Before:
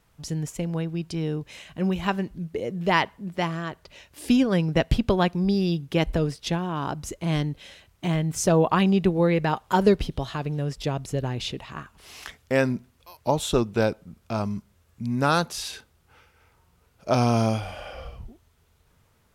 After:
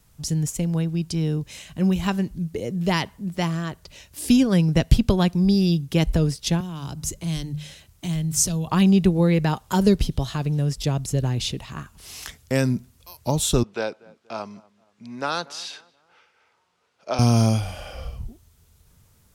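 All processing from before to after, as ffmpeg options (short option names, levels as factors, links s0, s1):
-filter_complex "[0:a]asettb=1/sr,asplit=3[s0][s1][s2];[s0]atrim=end=6.604[s3];[s1]atrim=start=6.6:end=8.68,asetpts=PTS-STARTPTS,afade=t=in:d=0.004:c=qsin,afade=t=out:st=2.076:d=0.004:c=qsin,bandreject=f=50:t=h:w=6,bandreject=f=100:t=h:w=6,bandreject=f=150:t=h:w=6,bandreject=f=200:t=h:w=6,acrossover=split=140|3000[s4][s5][s6];[s5]acompressor=threshold=0.0158:ratio=4:attack=3.2:release=140:knee=2.83:detection=peak[s7];[s4][s7][s6]amix=inputs=3:normalize=0[s8];[s2]atrim=start=8.676[s9];[s3][s8]acrossfade=d=0.004:c1=hsin:c2=qsin[s10];[s10][s9]acrossfade=d=0.004:c1=qsin:c2=hsin,asettb=1/sr,asplit=3[s11][s12][s13];[s11]atrim=end=13.634[s14];[s12]atrim=start=13.63:end=17.19,asetpts=PTS-STARTPTS,afade=t=in:d=0.004:c=qsin,afade=t=out:st=3.556:d=0.004:c=qsin,highpass=490,lowpass=3600,asplit=2[s15][s16];[s16]adelay=238,lowpass=f=2000:p=1,volume=0.0668,asplit=2[s17][s18];[s18]adelay=238,lowpass=f=2000:p=1,volume=0.41,asplit=2[s19][s20];[s20]adelay=238,lowpass=f=2000:p=1,volume=0.41[s21];[s15][s17][s19][s21]amix=inputs=4:normalize=0,atrim=end_sample=156996[s22];[s13]atrim=start=17.186[s23];[s14][s22]acrossfade=d=0.004:c1=hsin:c2=qsin[s24];[s24][s23]acrossfade=d=0.004:c1=qsin:c2=hsin,bass=f=250:g=8,treble=f=4000:g=11,acrossover=split=370|3000[s25][s26][s27];[s26]acompressor=threshold=0.0891:ratio=6[s28];[s25][s28][s27]amix=inputs=3:normalize=0,volume=0.891"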